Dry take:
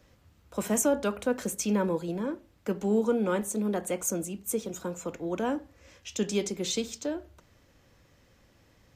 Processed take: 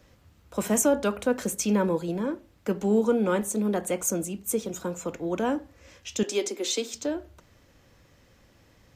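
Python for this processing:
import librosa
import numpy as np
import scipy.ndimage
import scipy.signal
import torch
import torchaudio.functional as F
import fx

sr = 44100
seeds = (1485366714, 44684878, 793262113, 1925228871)

y = fx.steep_highpass(x, sr, hz=250.0, slope=48, at=(6.23, 6.94))
y = y * 10.0 ** (3.0 / 20.0)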